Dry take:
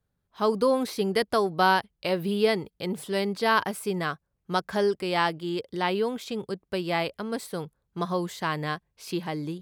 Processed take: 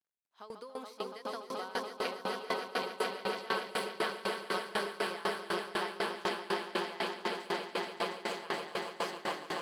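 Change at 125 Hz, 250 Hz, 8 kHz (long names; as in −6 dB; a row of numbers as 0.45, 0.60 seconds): −18.0, −13.5, −6.0 decibels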